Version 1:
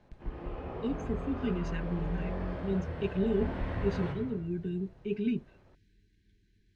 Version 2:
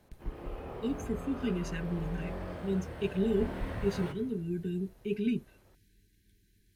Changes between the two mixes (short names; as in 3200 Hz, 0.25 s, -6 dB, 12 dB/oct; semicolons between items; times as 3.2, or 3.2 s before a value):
background: send -9.5 dB; master: remove air absorption 130 m